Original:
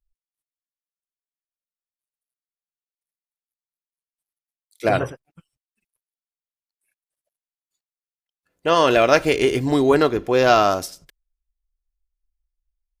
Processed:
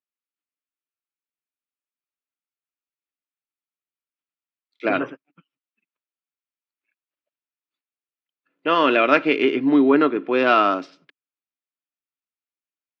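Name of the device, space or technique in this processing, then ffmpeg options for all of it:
kitchen radio: -filter_complex "[0:a]asettb=1/sr,asplit=3[link_01][link_02][link_03];[link_01]atrim=end=9.544[link_04];[link_02]atrim=start=9.54:end=10.28,asetpts=PTS-STARTPTS,afade=type=in:duration=0.004:curve=qsin,afade=type=out:start_time=0.736:duration=0.004:curve=qsin,highshelf=frequency=4700:gain=-10.5[link_05];[link_03]atrim=start=10.276[link_06];[link_04][link_05]acrossfade=duration=0.004:curve1=hsin:curve2=qsin[link_07];[link_07][link_06]acrossfade=duration=0.004:curve1=qsin:curve2=hsin,highpass=frequency=140:width=0.5412,highpass=frequency=140:width=1.3066,highpass=220,equalizer=frequency=280:width_type=q:width=4:gain=9,equalizer=frequency=510:width_type=q:width=4:gain=-3,equalizer=frequency=750:width_type=q:width=4:gain=-5,equalizer=frequency=1300:width_type=q:width=4:gain=5,equalizer=frequency=2500:width_type=q:width=4:gain=5,lowpass=frequency=3500:width=0.5412,lowpass=frequency=3500:width=1.3066,volume=-1.5dB"

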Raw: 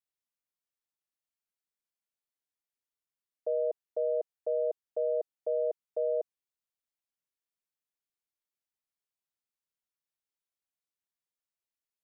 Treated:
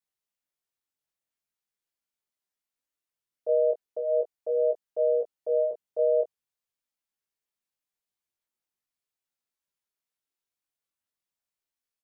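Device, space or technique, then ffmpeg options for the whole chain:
double-tracked vocal: -filter_complex "[0:a]asplit=2[link_01][link_02];[link_02]adelay=21,volume=-6dB[link_03];[link_01][link_03]amix=inputs=2:normalize=0,flanger=delay=16:depth=5.1:speed=0.41,volume=4dB"

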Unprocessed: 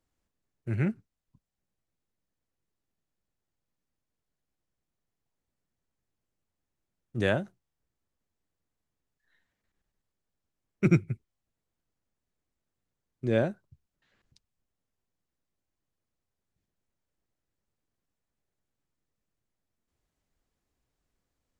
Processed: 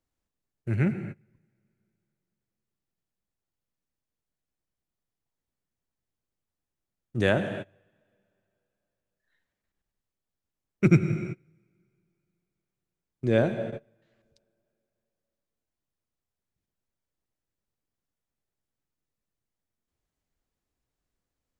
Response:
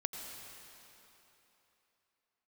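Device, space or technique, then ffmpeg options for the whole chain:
keyed gated reverb: -filter_complex "[0:a]asplit=3[link_01][link_02][link_03];[1:a]atrim=start_sample=2205[link_04];[link_02][link_04]afir=irnorm=-1:irlink=0[link_05];[link_03]apad=whole_len=952379[link_06];[link_05][link_06]sidechaingate=range=-28dB:threshold=-55dB:ratio=16:detection=peak,volume=3dB[link_07];[link_01][link_07]amix=inputs=2:normalize=0,volume=-4dB"

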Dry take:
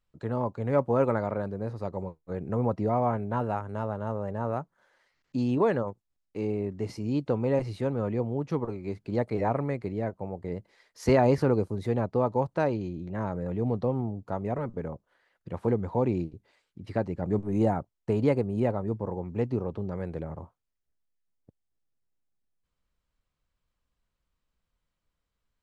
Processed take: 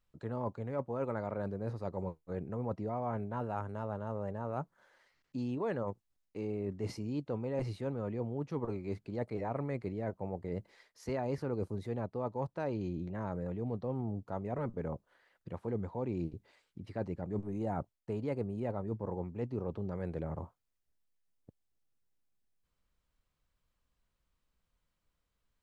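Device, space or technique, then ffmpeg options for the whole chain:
compression on the reversed sound: -af "areverse,acompressor=threshold=-33dB:ratio=6,areverse"

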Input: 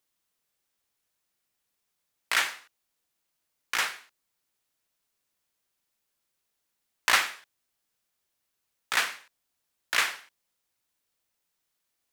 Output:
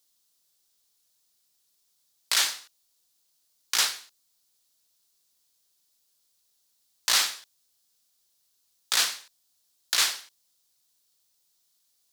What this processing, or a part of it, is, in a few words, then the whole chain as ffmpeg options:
over-bright horn tweeter: -af "highshelf=frequency=3100:width_type=q:width=1.5:gain=9.5,alimiter=limit=-11dB:level=0:latency=1:release=12"

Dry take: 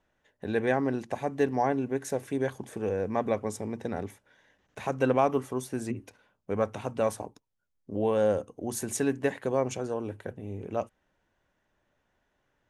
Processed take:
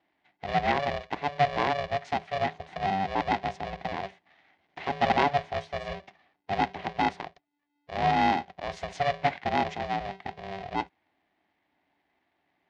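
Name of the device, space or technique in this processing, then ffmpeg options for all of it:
ring modulator pedal into a guitar cabinet: -af "aeval=exprs='val(0)*sgn(sin(2*PI*290*n/s))':channel_layout=same,highpass=90,equalizer=frequency=120:width_type=q:width=4:gain=-7,equalizer=frequency=220:width_type=q:width=4:gain=-4,equalizer=frequency=490:width_type=q:width=4:gain=-8,equalizer=frequency=730:width_type=q:width=4:gain=8,equalizer=frequency=1300:width_type=q:width=4:gain=-8,equalizer=frequency=2000:width_type=q:width=4:gain=5,lowpass=frequency=4300:width=0.5412,lowpass=frequency=4300:width=1.3066"

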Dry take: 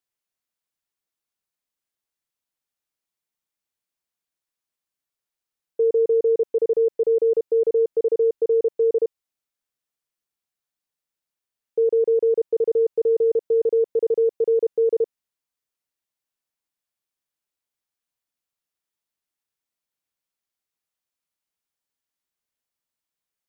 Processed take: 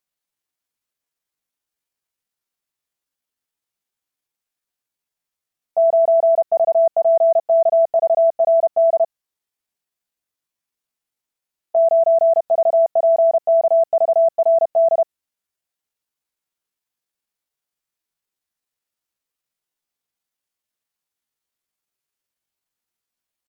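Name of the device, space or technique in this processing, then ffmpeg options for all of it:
chipmunk voice: -af "asetrate=64194,aresample=44100,atempo=0.686977,volume=4.5dB"

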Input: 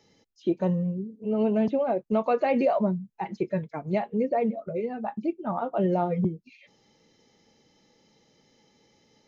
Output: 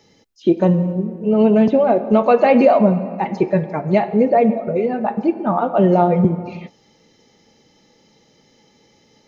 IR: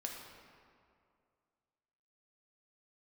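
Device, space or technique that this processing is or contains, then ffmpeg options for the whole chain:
keyed gated reverb: -filter_complex "[0:a]asplit=3[link_01][link_02][link_03];[1:a]atrim=start_sample=2205[link_04];[link_02][link_04]afir=irnorm=-1:irlink=0[link_05];[link_03]apad=whole_len=408846[link_06];[link_05][link_06]sidechaingate=range=-33dB:threshold=-55dB:ratio=16:detection=peak,volume=-4.5dB[link_07];[link_01][link_07]amix=inputs=2:normalize=0,volume=8dB"

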